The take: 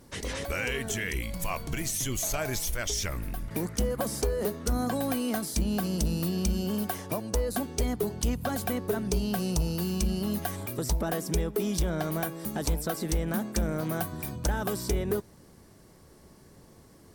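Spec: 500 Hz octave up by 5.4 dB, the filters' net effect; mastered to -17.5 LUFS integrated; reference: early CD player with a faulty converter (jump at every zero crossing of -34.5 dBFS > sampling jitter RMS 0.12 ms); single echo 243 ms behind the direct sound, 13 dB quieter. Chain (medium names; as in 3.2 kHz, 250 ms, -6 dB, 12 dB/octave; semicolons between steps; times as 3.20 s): peaking EQ 500 Hz +6.5 dB; delay 243 ms -13 dB; jump at every zero crossing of -34.5 dBFS; sampling jitter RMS 0.12 ms; trim +9 dB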